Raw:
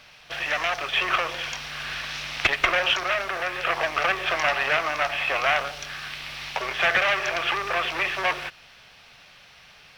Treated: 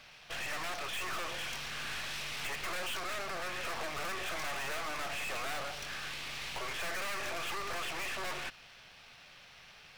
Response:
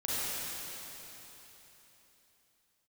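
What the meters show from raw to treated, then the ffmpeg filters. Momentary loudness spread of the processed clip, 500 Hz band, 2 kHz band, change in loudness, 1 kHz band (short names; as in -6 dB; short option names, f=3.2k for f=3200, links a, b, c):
17 LU, -13.5 dB, -14.0 dB, -13.0 dB, -13.0 dB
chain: -af "aeval=exprs='(tanh(70.8*val(0)+0.8)-tanh(0.8))/70.8':c=same"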